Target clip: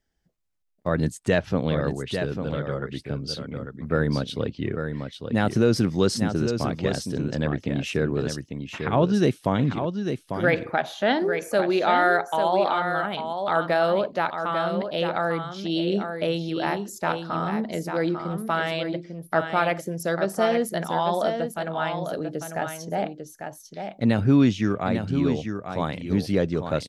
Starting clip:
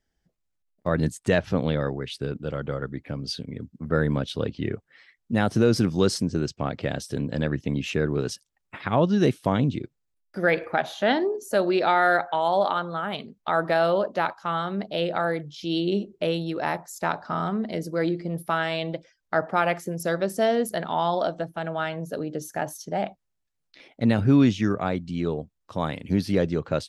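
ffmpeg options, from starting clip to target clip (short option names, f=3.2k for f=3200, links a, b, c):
-af "aecho=1:1:847:0.447"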